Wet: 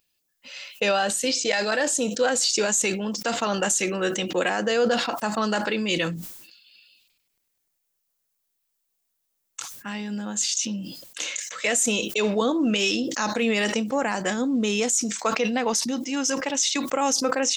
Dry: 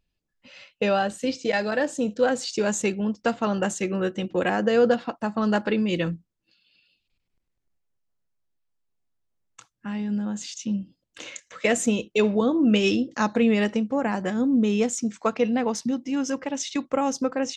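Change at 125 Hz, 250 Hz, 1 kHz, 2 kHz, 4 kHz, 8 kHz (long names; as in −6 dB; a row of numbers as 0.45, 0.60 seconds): −3.5, −3.5, +1.5, +3.5, +8.0, +10.5 decibels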